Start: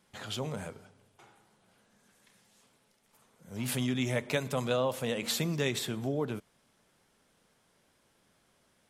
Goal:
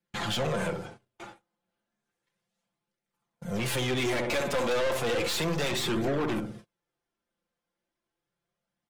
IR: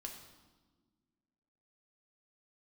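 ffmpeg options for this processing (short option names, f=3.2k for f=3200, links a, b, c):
-filter_complex "[0:a]aecho=1:1:5.8:0.59,asplit=2[a][b];[b]adelay=63,lowpass=f=810:p=1,volume=-7dB,asplit=2[c][d];[d]adelay=63,lowpass=f=810:p=1,volume=0.45,asplit=2[e][f];[f]adelay=63,lowpass=f=810:p=1,volume=0.45,asplit=2[g][h];[h]adelay=63,lowpass=f=810:p=1,volume=0.45,asplit=2[i][j];[j]adelay=63,lowpass=f=810:p=1,volume=0.45[k];[a][c][e][g][i][k]amix=inputs=6:normalize=0,acrossover=split=260|650|2200[l][m][n][o];[l]acompressor=threshold=-44dB:ratio=6[p];[p][m][n][o]amix=inputs=4:normalize=0,apsyclip=18.5dB,aeval=exprs='(tanh(12.6*val(0)+0.3)-tanh(0.3))/12.6':c=same,highshelf=f=7.3k:g=-9.5,agate=range=-32dB:threshold=-40dB:ratio=16:detection=peak,flanger=delay=0.4:depth=3.6:regen=-48:speed=0.33:shape=triangular"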